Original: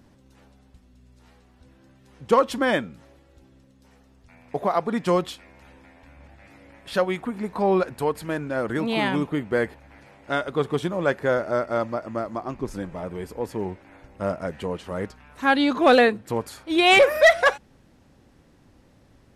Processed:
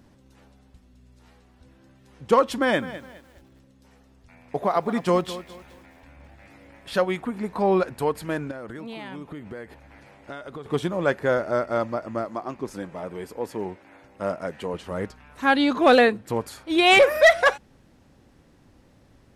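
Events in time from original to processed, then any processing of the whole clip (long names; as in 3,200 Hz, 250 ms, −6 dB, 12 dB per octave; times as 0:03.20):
0:02.56–0:06.95: feedback echo at a low word length 207 ms, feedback 35%, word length 8 bits, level −14.5 dB
0:08.51–0:10.66: downward compressor 10 to 1, threshold −33 dBFS
0:12.25–0:14.74: high-pass filter 220 Hz 6 dB per octave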